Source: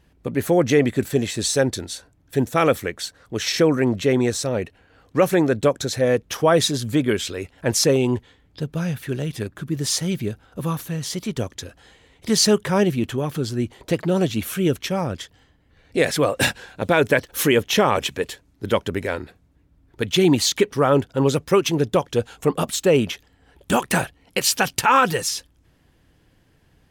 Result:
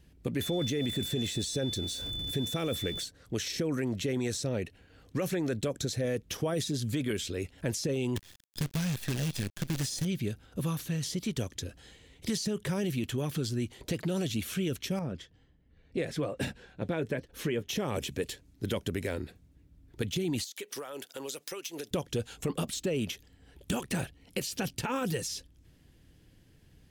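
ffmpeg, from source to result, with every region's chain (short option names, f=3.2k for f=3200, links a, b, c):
-filter_complex "[0:a]asettb=1/sr,asplit=3[a][b][c];[a]atrim=end=0.414[d];[b]atrim=start=0.41:end=3.04,asetpts=PTS-STARTPTS,afade=t=in:d=0.004:c=qsin,afade=t=out:st=2.626:d=0.004:c=qsin,aeval=exprs='val(0)+0.5*0.02*sgn(val(0))':c=same,aeval=exprs='val(0)+0.0398*sin(2*PI*3500*n/s)':c=same[e];[c]atrim=start=3.036[f];[d][e]acrossfade=d=0.004:c1=hsin:c2=qsin[g];[g][f]acrossfade=d=0.004:c1=qsin:c2=hsin,asettb=1/sr,asplit=3[h][i][j];[h]atrim=end=8.164[k];[i]atrim=start=8.16:end=10.05,asetpts=PTS-STARTPTS,afade=t=in:d=0.004:c=qsin,afade=t=out:st=1.886:d=0.004:c=qsin,highshelf=f=4.4k:g=9,aecho=1:1:1.2:0.53,atrim=end_sample=83349,acrusher=bits=5:dc=4:mix=0:aa=0.000001[l];[j]atrim=start=10.046[m];[k][l]acrossfade=d=0.004:c1=hsin:c2=qsin[n];[n][m]acrossfade=d=0.004:c1=qsin:c2=hsin,asettb=1/sr,asplit=3[o][p][q];[o]atrim=end=14.994[r];[p]atrim=start=14.99:end=17.69,asetpts=PTS-STARTPTS,afade=t=in:d=0.004:c=qsin,afade=t=out:st=2.696:d=0.004:c=qsin,lowpass=f=1.6k:p=1,flanger=delay=4.1:depth=2.3:regen=-63:speed=1.3:shape=triangular[s];[q]atrim=start=17.686[t];[r][s]acrossfade=d=0.004:c1=hsin:c2=qsin[u];[u][t]acrossfade=d=0.004:c1=qsin:c2=hsin,asettb=1/sr,asplit=3[v][w][x];[v]atrim=end=20.444[y];[w]atrim=start=20.44:end=21.91,asetpts=PTS-STARTPTS,afade=t=in:d=0.004:c=qsin,afade=t=out:st=1.466:d=0.004:c=qsin,highpass=570,aemphasis=mode=production:type=50kf,acompressor=threshold=-30dB:ratio=16:attack=3.2:release=140:knee=1:detection=peak[z];[x]atrim=start=21.906[aa];[y][z]acrossfade=d=0.004:c1=hsin:c2=qsin[ab];[ab][aa]acrossfade=d=0.004:c1=qsin:c2=hsin,equalizer=f=1k:w=0.67:g=-10,alimiter=limit=-16.5dB:level=0:latency=1:release=10,acrossover=split=680|6900[ac][ad][ae];[ac]acompressor=threshold=-30dB:ratio=4[af];[ad]acompressor=threshold=-38dB:ratio=4[ag];[ae]acompressor=threshold=-46dB:ratio=4[ah];[af][ag][ah]amix=inputs=3:normalize=0"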